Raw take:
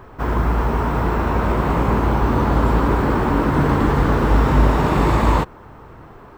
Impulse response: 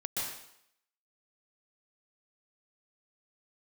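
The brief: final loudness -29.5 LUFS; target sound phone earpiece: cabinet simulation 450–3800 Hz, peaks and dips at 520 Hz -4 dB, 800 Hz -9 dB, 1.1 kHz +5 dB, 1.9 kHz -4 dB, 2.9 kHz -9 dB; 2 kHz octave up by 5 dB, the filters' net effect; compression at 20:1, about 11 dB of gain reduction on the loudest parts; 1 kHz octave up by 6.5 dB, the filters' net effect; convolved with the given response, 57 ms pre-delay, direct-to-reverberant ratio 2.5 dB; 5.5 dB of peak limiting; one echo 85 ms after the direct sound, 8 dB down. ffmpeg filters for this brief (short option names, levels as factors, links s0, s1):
-filter_complex "[0:a]equalizer=f=1000:t=o:g=6,equalizer=f=2000:t=o:g=7,acompressor=threshold=0.112:ratio=20,alimiter=limit=0.15:level=0:latency=1,aecho=1:1:85:0.398,asplit=2[s0][s1];[1:a]atrim=start_sample=2205,adelay=57[s2];[s1][s2]afir=irnorm=-1:irlink=0,volume=0.473[s3];[s0][s3]amix=inputs=2:normalize=0,highpass=450,equalizer=f=520:t=q:w=4:g=-4,equalizer=f=800:t=q:w=4:g=-9,equalizer=f=1100:t=q:w=4:g=5,equalizer=f=1900:t=q:w=4:g=-4,equalizer=f=2900:t=q:w=4:g=-9,lowpass=f=3800:w=0.5412,lowpass=f=3800:w=1.3066,volume=0.631"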